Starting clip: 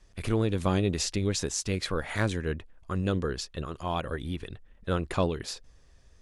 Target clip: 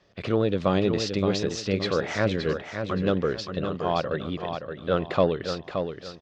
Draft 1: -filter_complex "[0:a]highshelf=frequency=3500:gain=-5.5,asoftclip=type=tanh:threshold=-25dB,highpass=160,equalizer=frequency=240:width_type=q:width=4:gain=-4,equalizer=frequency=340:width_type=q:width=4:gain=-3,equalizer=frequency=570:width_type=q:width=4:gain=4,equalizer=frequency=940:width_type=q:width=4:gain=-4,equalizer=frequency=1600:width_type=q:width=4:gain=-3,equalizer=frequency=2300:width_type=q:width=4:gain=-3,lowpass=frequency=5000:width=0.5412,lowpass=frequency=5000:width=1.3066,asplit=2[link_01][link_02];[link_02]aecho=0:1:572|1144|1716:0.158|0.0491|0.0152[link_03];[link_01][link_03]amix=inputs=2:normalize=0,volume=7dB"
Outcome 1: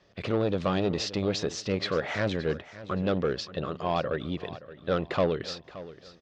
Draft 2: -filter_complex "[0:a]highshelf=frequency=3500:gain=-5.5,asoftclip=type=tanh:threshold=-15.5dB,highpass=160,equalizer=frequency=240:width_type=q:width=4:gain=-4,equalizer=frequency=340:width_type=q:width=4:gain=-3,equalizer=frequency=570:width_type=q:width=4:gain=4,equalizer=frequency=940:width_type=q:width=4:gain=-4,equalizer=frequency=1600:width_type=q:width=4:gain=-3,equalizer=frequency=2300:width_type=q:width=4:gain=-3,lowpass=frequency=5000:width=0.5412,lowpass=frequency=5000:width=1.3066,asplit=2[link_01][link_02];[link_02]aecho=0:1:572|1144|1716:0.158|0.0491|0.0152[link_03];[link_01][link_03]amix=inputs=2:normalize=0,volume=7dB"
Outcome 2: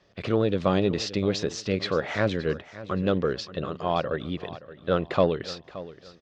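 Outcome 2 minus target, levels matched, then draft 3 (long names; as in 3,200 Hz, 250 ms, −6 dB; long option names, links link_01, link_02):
echo-to-direct −9 dB
-filter_complex "[0:a]highshelf=frequency=3500:gain=-5.5,asoftclip=type=tanh:threshold=-15.5dB,highpass=160,equalizer=frequency=240:width_type=q:width=4:gain=-4,equalizer=frequency=340:width_type=q:width=4:gain=-3,equalizer=frequency=570:width_type=q:width=4:gain=4,equalizer=frequency=940:width_type=q:width=4:gain=-4,equalizer=frequency=1600:width_type=q:width=4:gain=-3,equalizer=frequency=2300:width_type=q:width=4:gain=-3,lowpass=frequency=5000:width=0.5412,lowpass=frequency=5000:width=1.3066,asplit=2[link_01][link_02];[link_02]aecho=0:1:572|1144|1716|2288:0.447|0.138|0.0429|0.0133[link_03];[link_01][link_03]amix=inputs=2:normalize=0,volume=7dB"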